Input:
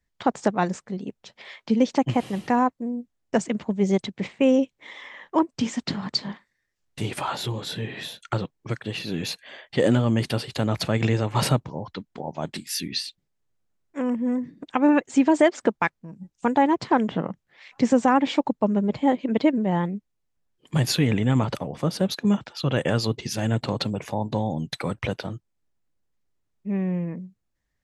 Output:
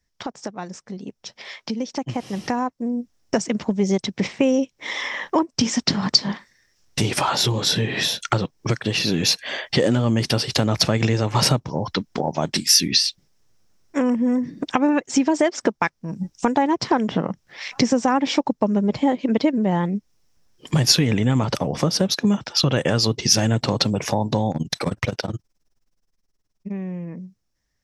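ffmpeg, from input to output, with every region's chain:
-filter_complex "[0:a]asettb=1/sr,asplit=3[a][b][c];[a]atrim=end=24.514[d];[b]atrim=start=24.51:end=26.72,asetpts=PTS-STARTPTS,afade=t=in:d=0.004:c=qsin,afade=t=out:st=2.206:d=0.004:c=qsin,volume=19.5dB,asoftclip=hard,volume=-19.5dB,tremolo=f=19:d=0.91[e];[c]atrim=start=26.716[f];[d][e]acrossfade=d=0.004:c1=hsin:c2=qsin[g];[g][f]acrossfade=d=0.004:c1=qsin:c2=hsin,acompressor=threshold=-34dB:ratio=3,equalizer=f=5.5k:t=o:w=0.38:g=12.5,dynaudnorm=f=490:g=11:m=12dB,volume=2.5dB"

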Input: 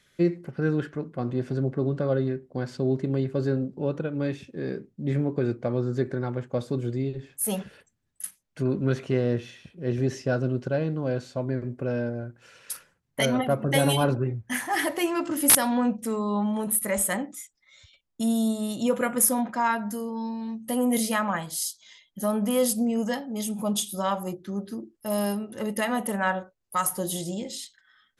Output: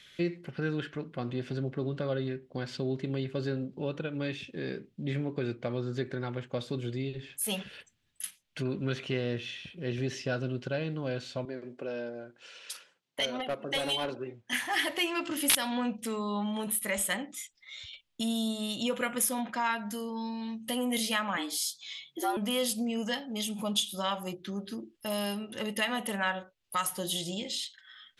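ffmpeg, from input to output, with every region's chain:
-filter_complex "[0:a]asettb=1/sr,asplit=3[a][b][c];[a]atrim=end=11.454[d];[b]atrim=start=11.45:end=14.53,asetpts=PTS-STARTPTS,afade=t=in:d=0.004:c=qsin,afade=t=out:st=3.076:d=0.004:c=qsin,highpass=350,lowpass=7.6k,equalizer=f=2.1k:t=o:w=2.1:g=-7.5,aeval=exprs='clip(val(0),-1,0.0668)':c=same[e];[c]atrim=start=14.526[f];[d][e]acrossfade=d=0.004:c1=hsin:c2=qsin[g];[g][f]acrossfade=d=0.004:c1=qsin:c2=hsin,asettb=1/sr,asplit=3[h][i][j];[h]atrim=end=21.374[k];[i]atrim=start=21.37:end=22.37,asetpts=PTS-STARTPTS,afade=t=in:d=0.004:c=qsin,afade=t=out:st=0.996:d=0.004:c=qsin,lowshelf=f=200:g=7.5,afreqshift=140,asplit=2[l][m];[m]adelay=13,volume=-8dB[n];[l][n]amix=inputs=2:normalize=0,atrim=end_sample=44100[o];[j]atrim=start=22.366[p];[k][o]acrossfade=d=0.004:c1=hsin:c2=qsin[q];[q][p]acrossfade=d=0.004:c1=qsin:c2=hsin,equalizer=f=3.1k:w=0.9:g=14,acompressor=threshold=-42dB:ratio=1.5"

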